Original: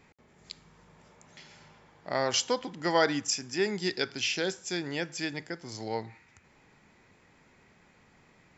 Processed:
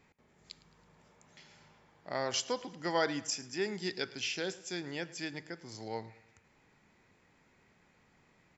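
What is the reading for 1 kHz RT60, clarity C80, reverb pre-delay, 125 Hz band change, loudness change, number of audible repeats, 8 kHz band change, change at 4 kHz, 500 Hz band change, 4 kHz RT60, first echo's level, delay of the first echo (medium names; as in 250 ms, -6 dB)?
no reverb, no reverb, no reverb, -6.0 dB, -6.0 dB, 3, no reading, -6.0 dB, -6.0 dB, no reverb, -20.0 dB, 108 ms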